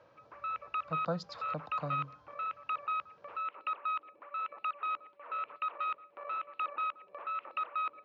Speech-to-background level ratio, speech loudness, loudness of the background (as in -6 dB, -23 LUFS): -4.0 dB, -41.5 LUFS, -37.5 LUFS